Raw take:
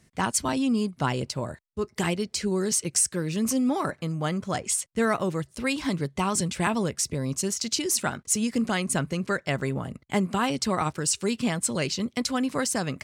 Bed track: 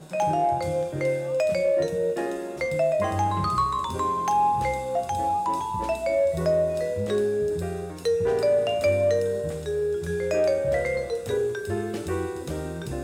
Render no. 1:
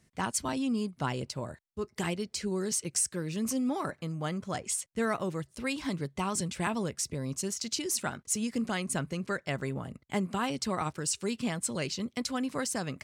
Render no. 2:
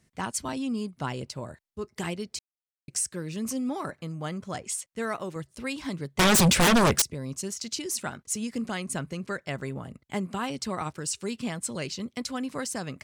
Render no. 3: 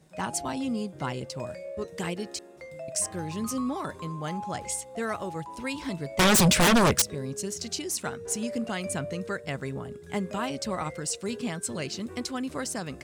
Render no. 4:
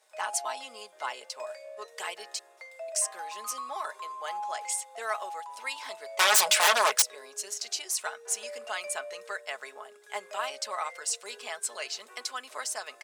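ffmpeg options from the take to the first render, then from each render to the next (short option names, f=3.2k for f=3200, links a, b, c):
-af "volume=-6dB"
-filter_complex "[0:a]asettb=1/sr,asplit=3[a][b][c];[a]atrim=end=4.704[d];[b]atrim=start=4.7:end=5.36,asetpts=PTS-STARTPTS,afade=t=in:d=0.004:c=qsin,afade=t=out:st=0.656:d=0.004:c=qsin,lowshelf=f=170:g=-9[e];[c]atrim=start=5.356[f];[d][e]acrossfade=d=0.004:c1=hsin:c2=qsin[g];[g][f]acrossfade=d=0.004:c1=qsin:c2=hsin,asettb=1/sr,asplit=3[h][i][j];[h]atrim=end=6.194[k];[i]atrim=start=6.19:end=7.02,asetpts=PTS-STARTPTS,afade=t=in:d=0.004:c=qsin,afade=t=out:st=0.826:d=0.004:c=qsin,aeval=exprs='0.158*sin(PI/2*7.08*val(0)/0.158)':c=same[l];[j]atrim=start=7.016[m];[k][l]acrossfade=d=0.004:c1=hsin:c2=qsin[n];[n][m]acrossfade=d=0.004:c1=qsin:c2=hsin,asplit=3[o][p][q];[o]atrim=end=2.39,asetpts=PTS-STARTPTS,afade=t=out:st=2.386:d=0.004:c=hsin[r];[p]atrim=start=2.39:end=2.88,asetpts=PTS-STARTPTS,volume=0[s];[q]atrim=start=2.88,asetpts=PTS-STARTPTS,afade=t=in:d=0.004:c=hsin[t];[r][s][t]concat=n=3:v=0:a=1"
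-filter_complex "[1:a]volume=-16.5dB[a];[0:a][a]amix=inputs=2:normalize=0"
-af "highpass=f=640:w=0.5412,highpass=f=640:w=1.3066,aecho=1:1:4.7:0.45"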